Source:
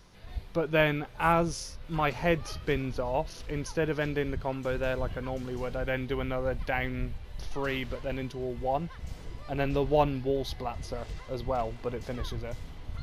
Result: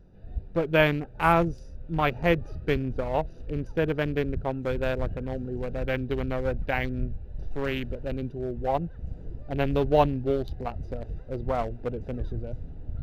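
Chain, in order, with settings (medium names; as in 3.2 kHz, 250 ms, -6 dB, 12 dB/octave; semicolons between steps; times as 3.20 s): local Wiener filter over 41 samples; trim +4 dB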